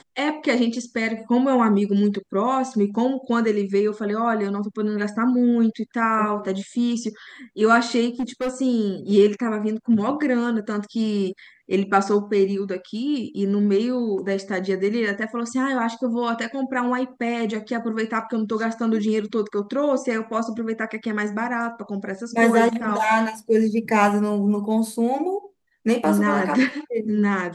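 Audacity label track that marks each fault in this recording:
8.190000	8.500000	clipped -20.5 dBFS

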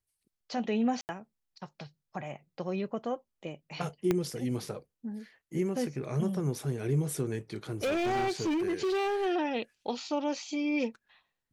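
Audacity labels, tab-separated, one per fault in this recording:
1.010000	1.090000	dropout 79 ms
4.110000	4.110000	pop -14 dBFS
7.700000	9.270000	clipped -26.5 dBFS

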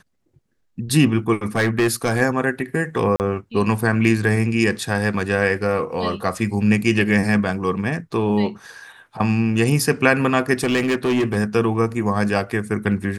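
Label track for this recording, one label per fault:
1.560000	2.220000	clipped -13.5 dBFS
3.160000	3.200000	dropout 39 ms
10.630000	11.370000	clipped -15 dBFS

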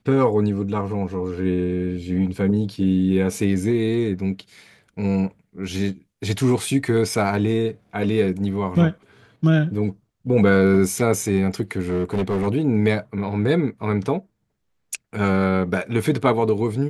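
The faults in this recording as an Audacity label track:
11.870000	12.480000	clipped -18 dBFS

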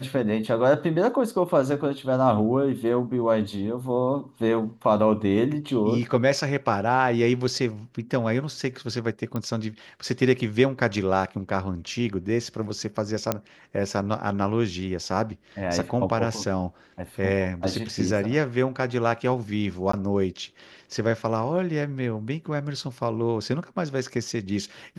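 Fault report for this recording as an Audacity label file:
9.360000	9.360000	pop -17 dBFS
13.320000	13.320000	pop -8 dBFS
19.920000	19.930000	dropout 14 ms

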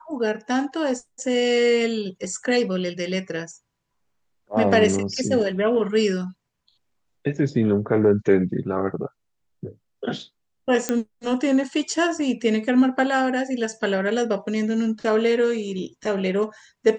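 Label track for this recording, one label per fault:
10.890000	10.890000	pop -7 dBFS

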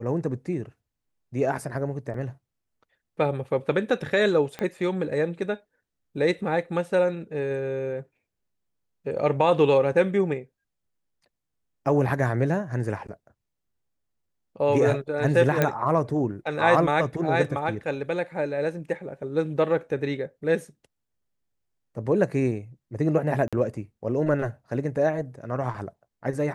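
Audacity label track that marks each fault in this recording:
2.140000	2.140000	dropout 2.8 ms
4.590000	4.590000	pop -18 dBFS
15.620000	15.620000	pop -8 dBFS
23.480000	23.530000	dropout 46 ms

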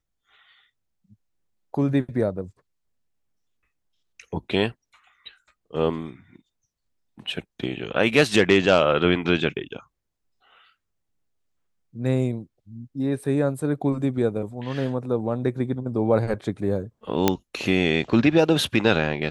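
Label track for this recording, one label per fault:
17.280000	17.280000	pop -3 dBFS

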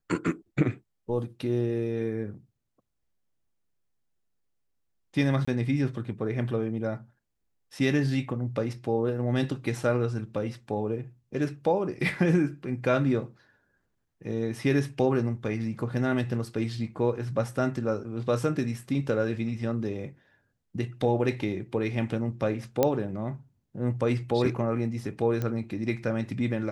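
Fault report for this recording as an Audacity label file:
5.450000	5.470000	dropout 25 ms
22.830000	22.830000	pop -9 dBFS
25.420000	25.420000	pop -18 dBFS

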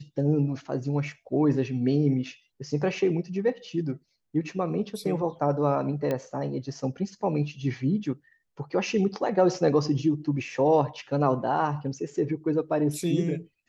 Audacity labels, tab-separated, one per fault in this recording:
6.110000	6.110000	pop -16 dBFS

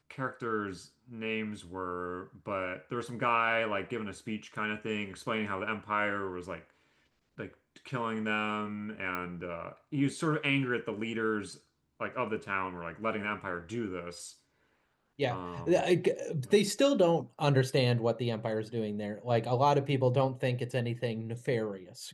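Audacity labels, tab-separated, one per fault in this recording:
9.150000	9.150000	pop -22 dBFS

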